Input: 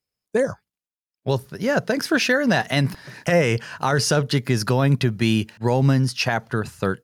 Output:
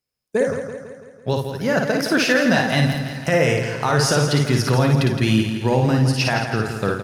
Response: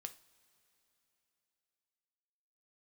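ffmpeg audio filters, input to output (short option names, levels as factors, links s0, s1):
-filter_complex "[0:a]aecho=1:1:166|332|498|664|830|996:0.376|0.199|0.106|0.056|0.0297|0.0157,asplit=2[s0][s1];[1:a]atrim=start_sample=2205,adelay=55[s2];[s1][s2]afir=irnorm=-1:irlink=0,volume=1.12[s3];[s0][s3]amix=inputs=2:normalize=0"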